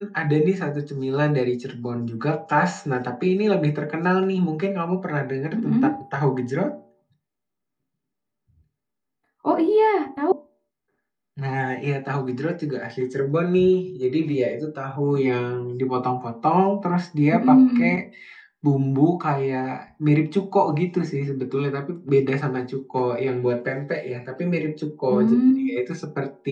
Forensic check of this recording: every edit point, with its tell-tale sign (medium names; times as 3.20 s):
10.32 s: sound stops dead